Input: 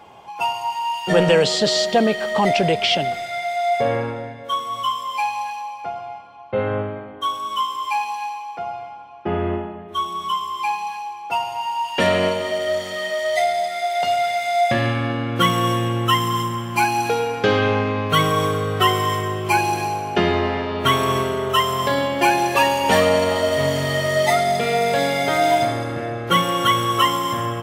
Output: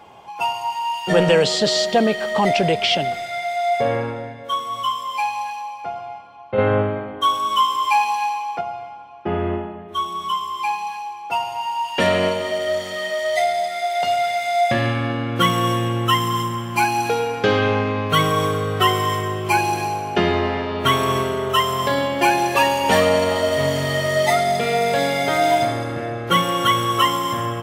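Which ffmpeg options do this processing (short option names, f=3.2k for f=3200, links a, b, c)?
-filter_complex "[0:a]asettb=1/sr,asplit=3[a][b][c];[a]atrim=end=6.584[d];[b]atrim=start=6.58:end=8.61,asetpts=PTS-STARTPTS,afade=t=in:d=0.004:c=qsin,afade=t=out:st=2.026:d=0.004:c=qsin,acontrast=39[e];[c]atrim=start=8.606[f];[d][e]acrossfade=d=0.004:c1=hsin:c2=qsin[g];[g][f]acrossfade=d=0.004:c1=qsin:c2=hsin"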